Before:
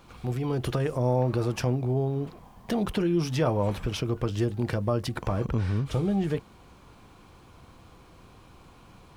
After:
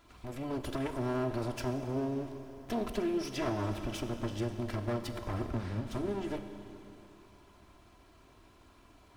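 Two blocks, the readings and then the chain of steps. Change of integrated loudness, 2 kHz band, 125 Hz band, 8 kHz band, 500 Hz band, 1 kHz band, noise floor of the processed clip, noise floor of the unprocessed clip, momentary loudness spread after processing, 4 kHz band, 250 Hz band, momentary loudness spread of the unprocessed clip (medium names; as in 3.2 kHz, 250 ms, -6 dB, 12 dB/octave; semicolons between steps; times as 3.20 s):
-8.0 dB, -5.0 dB, -11.5 dB, -5.5 dB, -7.5 dB, -6.0 dB, -60 dBFS, -53 dBFS, 12 LU, -6.5 dB, -6.5 dB, 6 LU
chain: comb filter that takes the minimum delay 3 ms; Schroeder reverb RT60 3.1 s, combs from 30 ms, DRR 7.5 dB; trim -6.5 dB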